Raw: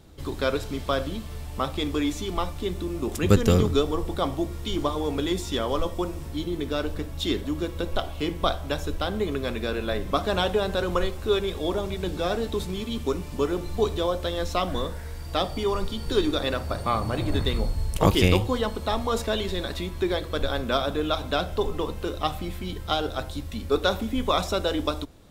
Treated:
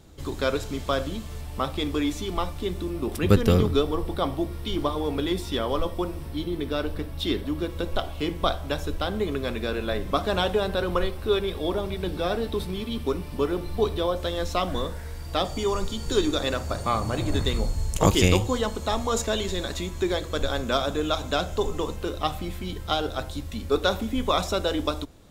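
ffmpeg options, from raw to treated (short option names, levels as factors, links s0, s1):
-af "asetnsamples=n=441:p=0,asendcmd='1.41 equalizer g -2;2.9 equalizer g -9.5;7.7 equalizer g -2.5;10.68 equalizer g -10;14.16 equalizer g 0.5;15.45 equalizer g 12;21.96 equalizer g 2.5',equalizer=f=6900:t=o:w=0.37:g=4.5"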